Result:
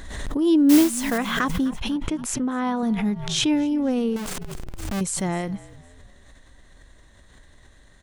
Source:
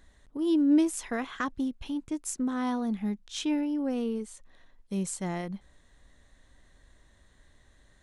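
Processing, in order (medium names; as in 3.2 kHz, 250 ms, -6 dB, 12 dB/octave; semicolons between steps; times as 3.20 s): 0.69–1.18 s: modulation noise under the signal 13 dB; 1.96–2.83 s: tone controls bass -6 dB, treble -11 dB; 4.16–5.01 s: Schmitt trigger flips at -49 dBFS; on a send: frequency-shifting echo 254 ms, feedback 44%, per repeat -46 Hz, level -19.5 dB; on the sum: swell ahead of each attack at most 44 dB/s; trim +7 dB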